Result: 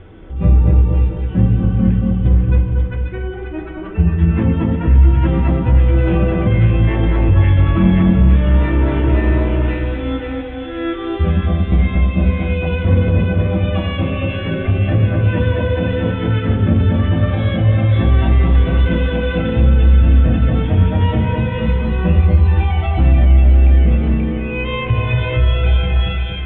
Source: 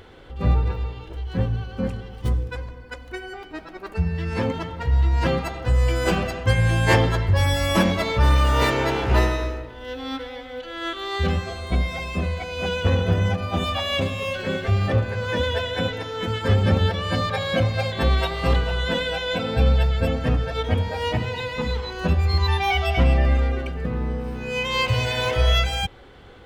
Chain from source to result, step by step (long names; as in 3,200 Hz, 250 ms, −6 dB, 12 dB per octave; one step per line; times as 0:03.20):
0:07.94–0:08.35: running median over 41 samples
Butterworth low-pass 3,500 Hz 96 dB per octave
low-shelf EQ 330 Hz −4 dB
echo with a time of its own for lows and highs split 1,400 Hz, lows 232 ms, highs 534 ms, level −3.5 dB
brickwall limiter −16.5 dBFS, peak gain reduction 10 dB
tilt shelving filter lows +10 dB, about 650 Hz
mains-hum notches 50/100/150/200/250 Hz
convolution reverb RT60 0.65 s, pre-delay 3 ms, DRR 2 dB
level +5.5 dB